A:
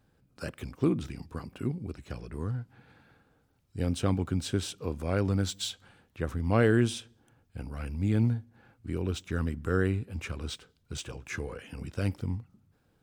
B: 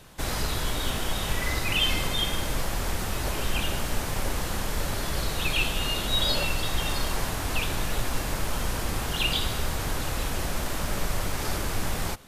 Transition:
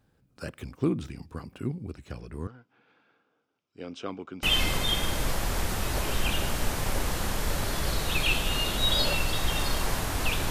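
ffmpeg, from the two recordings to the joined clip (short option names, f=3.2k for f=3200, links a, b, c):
-filter_complex "[0:a]asettb=1/sr,asplit=3[a][b][c];[a]atrim=end=2.474[d];[b]atrim=start=2.47:end=4.43,asetpts=PTS-STARTPTS,afade=t=in:d=0.004:c=qsin,afade=t=out:st=1.956:d=0.004:c=qsin,highpass=400,equalizer=f=550:t=q:w=4:g=-4,equalizer=f=820:t=q:w=4:g=-6,equalizer=f=1.8k:t=q:w=4:g=-8,equalizer=f=4.2k:t=q:w=4:g=-9,lowpass=f=5.3k:w=0.5412,lowpass=f=5.3k:w=1.3066[e];[c]atrim=start=4.426[f];[d][e]acrossfade=d=0.004:c1=hsin:c2=qsin[g];[g][f]acrossfade=d=0.004:c1=qsin:c2=hsin,apad=whole_dur=10.5,atrim=end=10.5,atrim=end=4.432[h];[1:a]atrim=start=1.728:end=7.8[i];[h][i]acrossfade=d=0.004:c1=hsin:c2=hsin"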